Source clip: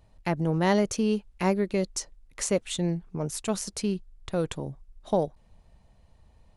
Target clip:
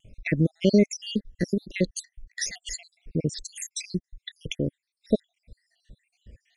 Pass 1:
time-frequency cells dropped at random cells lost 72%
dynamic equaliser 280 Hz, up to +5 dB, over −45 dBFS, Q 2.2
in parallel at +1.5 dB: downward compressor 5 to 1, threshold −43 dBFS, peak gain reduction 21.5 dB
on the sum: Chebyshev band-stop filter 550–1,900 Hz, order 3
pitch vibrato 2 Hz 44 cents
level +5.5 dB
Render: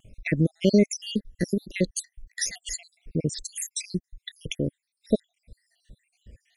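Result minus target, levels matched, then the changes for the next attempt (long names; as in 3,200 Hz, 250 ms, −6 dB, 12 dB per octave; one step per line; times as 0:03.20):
8,000 Hz band +2.5 dB
add after dynamic equaliser: low-pass filter 6,900 Hz 12 dB per octave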